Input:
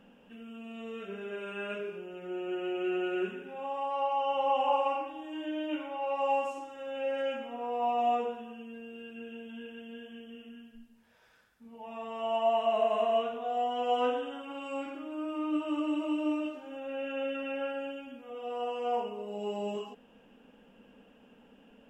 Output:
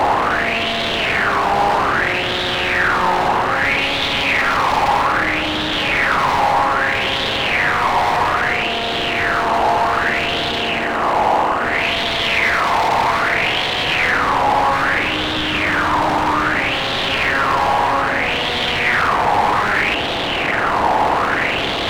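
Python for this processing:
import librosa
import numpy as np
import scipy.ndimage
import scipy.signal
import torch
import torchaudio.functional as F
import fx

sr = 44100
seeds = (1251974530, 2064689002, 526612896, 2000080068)

p1 = fx.bin_compress(x, sr, power=0.2)
p2 = fx.peak_eq(p1, sr, hz=270.0, db=2.5, octaves=2.6)
p3 = fx.rider(p2, sr, range_db=10, speed_s=2.0)
p4 = p2 + (p3 * 10.0 ** (-0.5 / 20.0))
p5 = 10.0 ** (-18.0 / 20.0) * (np.abs((p4 / 10.0 ** (-18.0 / 20.0) + 3.0) % 4.0 - 2.0) - 1.0)
p6 = fx.peak_eq(p5, sr, hz=92.0, db=3.5, octaves=2.0)
y = fx.bell_lfo(p6, sr, hz=0.62, low_hz=850.0, high_hz=3500.0, db=15)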